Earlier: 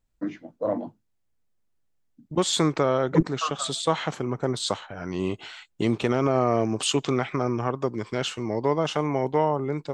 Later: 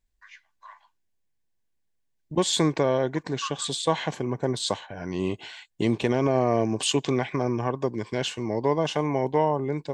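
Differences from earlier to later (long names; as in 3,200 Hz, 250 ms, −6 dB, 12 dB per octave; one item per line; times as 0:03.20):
first voice: add Butterworth high-pass 1,100 Hz 48 dB per octave
master: add Butterworth band-reject 1,300 Hz, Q 4.8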